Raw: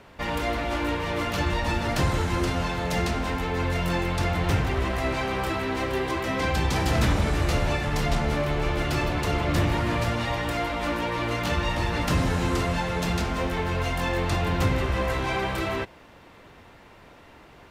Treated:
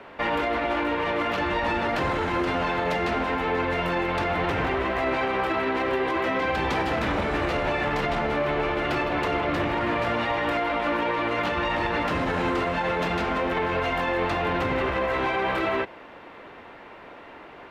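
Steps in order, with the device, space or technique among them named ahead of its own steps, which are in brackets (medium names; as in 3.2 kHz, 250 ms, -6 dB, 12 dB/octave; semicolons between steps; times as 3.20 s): DJ mixer with the lows and highs turned down (three-band isolator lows -14 dB, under 240 Hz, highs -18 dB, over 3.3 kHz; peak limiter -24.5 dBFS, peak gain reduction 8.5 dB); trim +7.5 dB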